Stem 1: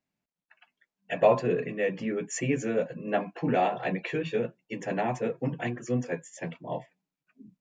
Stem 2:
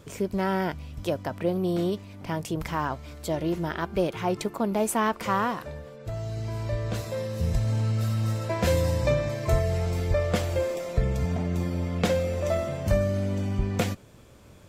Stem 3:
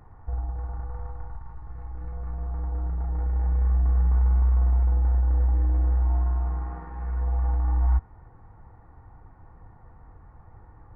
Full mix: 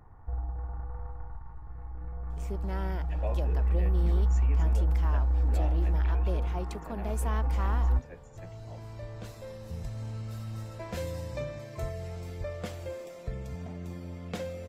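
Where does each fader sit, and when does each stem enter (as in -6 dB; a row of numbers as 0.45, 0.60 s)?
-17.0, -12.0, -4.0 dB; 2.00, 2.30, 0.00 s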